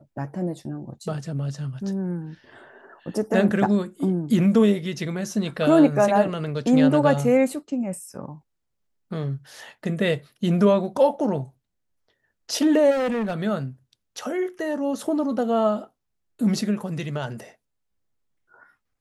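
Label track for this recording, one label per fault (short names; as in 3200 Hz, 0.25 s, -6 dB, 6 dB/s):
12.900000	13.340000	clipped -21.5 dBFS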